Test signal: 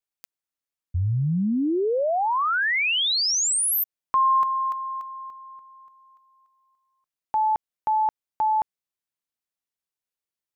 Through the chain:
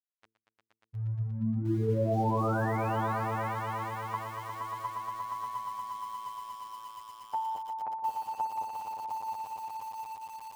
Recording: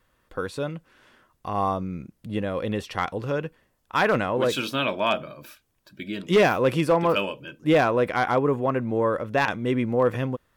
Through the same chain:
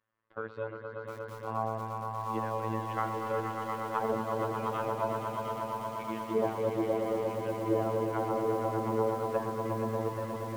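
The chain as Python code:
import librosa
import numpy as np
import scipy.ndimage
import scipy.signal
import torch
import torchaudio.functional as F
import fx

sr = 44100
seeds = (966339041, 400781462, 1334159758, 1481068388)

p1 = fx.law_mismatch(x, sr, coded='A')
p2 = scipy.signal.sosfilt(scipy.signal.butter(2, 78.0, 'highpass', fs=sr, output='sos'), p1)
p3 = fx.env_lowpass_down(p2, sr, base_hz=560.0, full_db=-19.5)
p4 = scipy.signal.sosfilt(scipy.signal.butter(2, 2000.0, 'lowpass', fs=sr, output='sos'), p3)
p5 = fx.low_shelf(p4, sr, hz=380.0, db=-4.0)
p6 = fx.hum_notches(p5, sr, base_hz=60, count=7)
p7 = fx.robotise(p6, sr, hz=111.0)
p8 = p7 + fx.echo_swell(p7, sr, ms=118, loudest=5, wet_db=-7.0, dry=0)
p9 = fx.echo_crushed(p8, sr, ms=709, feedback_pct=55, bits=7, wet_db=-8.5)
y = p9 * 10.0 ** (-3.0 / 20.0)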